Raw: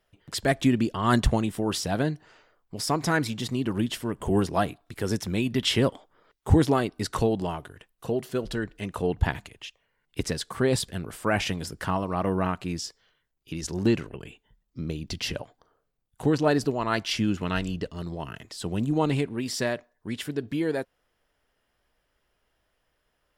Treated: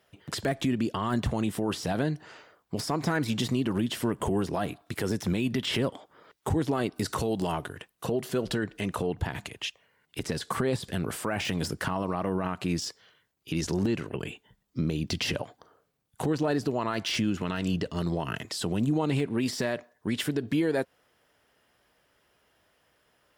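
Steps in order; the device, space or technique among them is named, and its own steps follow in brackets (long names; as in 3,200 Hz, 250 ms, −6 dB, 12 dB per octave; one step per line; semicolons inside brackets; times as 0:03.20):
0:06.96–0:07.52: high-shelf EQ 4,500 Hz +11.5 dB
podcast mastering chain (high-pass filter 95 Hz 12 dB per octave; de-essing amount 85%; downward compressor 4 to 1, threshold −29 dBFS, peak gain reduction 12.5 dB; brickwall limiter −25 dBFS, peak gain reduction 9 dB; level +7.5 dB; MP3 96 kbit/s 48,000 Hz)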